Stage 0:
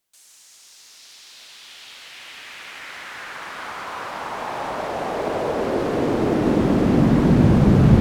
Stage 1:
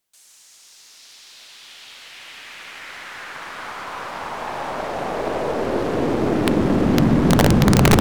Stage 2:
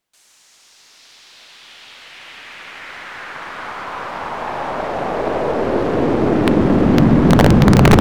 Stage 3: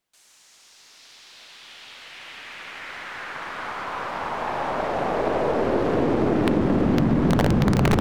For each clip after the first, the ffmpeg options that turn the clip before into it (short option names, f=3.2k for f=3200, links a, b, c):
-af "aeval=exprs='(mod(2*val(0)+1,2)-1)/2':c=same,aeval=exprs='0.501*(cos(1*acos(clip(val(0)/0.501,-1,1)))-cos(1*PI/2))+0.0282*(cos(8*acos(clip(val(0)/0.501,-1,1)))-cos(8*PI/2))':c=same"
-af "highshelf=f=4.7k:g=-11,volume=4.5dB"
-af "acompressor=threshold=-13dB:ratio=6,volume=-3dB"